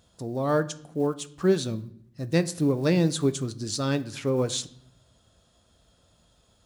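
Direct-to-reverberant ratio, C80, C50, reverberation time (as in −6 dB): 11.5 dB, 20.5 dB, 17.5 dB, 0.65 s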